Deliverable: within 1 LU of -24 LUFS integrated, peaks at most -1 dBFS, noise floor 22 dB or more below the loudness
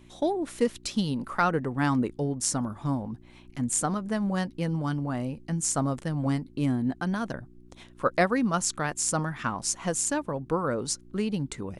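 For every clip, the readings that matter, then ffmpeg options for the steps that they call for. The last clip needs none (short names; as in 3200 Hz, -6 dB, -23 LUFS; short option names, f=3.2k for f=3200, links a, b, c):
hum 60 Hz; harmonics up to 360 Hz; hum level -55 dBFS; loudness -28.5 LUFS; peak -9.0 dBFS; loudness target -24.0 LUFS
-> -af "bandreject=f=60:t=h:w=4,bandreject=f=120:t=h:w=4,bandreject=f=180:t=h:w=4,bandreject=f=240:t=h:w=4,bandreject=f=300:t=h:w=4,bandreject=f=360:t=h:w=4"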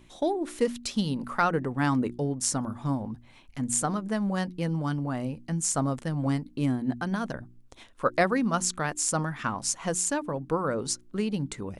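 hum none; loudness -28.5 LUFS; peak -9.0 dBFS; loudness target -24.0 LUFS
-> -af "volume=4.5dB"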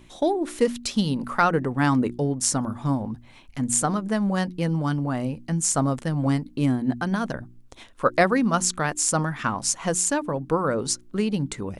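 loudness -24.0 LUFS; peak -4.5 dBFS; noise floor -49 dBFS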